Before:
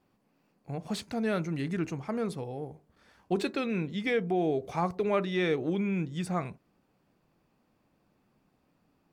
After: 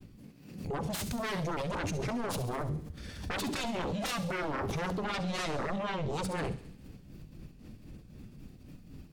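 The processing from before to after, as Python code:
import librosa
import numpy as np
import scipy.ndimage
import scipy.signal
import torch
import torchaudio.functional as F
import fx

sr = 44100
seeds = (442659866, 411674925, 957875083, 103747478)

p1 = fx.tone_stack(x, sr, knobs='10-0-1')
p2 = fx.over_compress(p1, sr, threshold_db=-58.0, ratio=-1.0)
p3 = p1 + (p2 * 10.0 ** (0.5 / 20.0))
p4 = p3 * (1.0 - 0.67 / 2.0 + 0.67 / 2.0 * np.cos(2.0 * np.pi * 3.9 * (np.arange(len(p3)) / sr)))
p5 = fx.fold_sine(p4, sr, drive_db=19, ceiling_db=-36.0)
p6 = fx.granulator(p5, sr, seeds[0], grain_ms=100.0, per_s=20.0, spray_ms=16.0, spread_st=0)
p7 = fx.echo_wet_highpass(p6, sr, ms=68, feedback_pct=62, hz=3500.0, wet_db=-11)
p8 = fx.rev_schroeder(p7, sr, rt60_s=0.66, comb_ms=38, drr_db=15.0)
p9 = fx.pre_swell(p8, sr, db_per_s=70.0)
y = p9 * 10.0 ** (6.0 / 20.0)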